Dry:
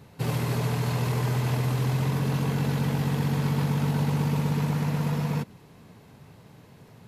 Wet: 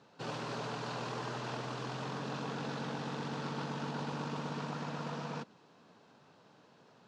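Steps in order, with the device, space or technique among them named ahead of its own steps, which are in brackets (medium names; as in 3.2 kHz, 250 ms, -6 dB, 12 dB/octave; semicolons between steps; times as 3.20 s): full-range speaker at full volume (loudspeaker Doppler distortion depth 0.2 ms; cabinet simulation 300–6400 Hz, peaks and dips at 410 Hz -3 dB, 1.4 kHz +4 dB, 2.1 kHz -8 dB); trim -5.5 dB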